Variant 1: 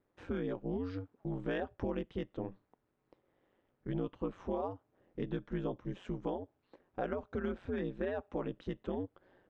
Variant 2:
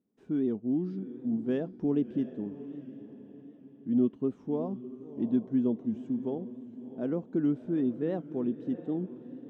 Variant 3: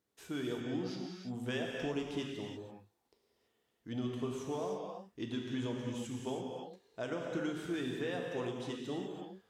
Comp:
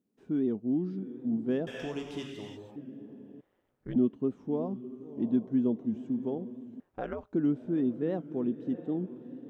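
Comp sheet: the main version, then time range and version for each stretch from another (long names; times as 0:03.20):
2
0:01.67–0:02.76: punch in from 3
0:03.41–0:03.96: punch in from 1
0:06.80–0:07.33: punch in from 1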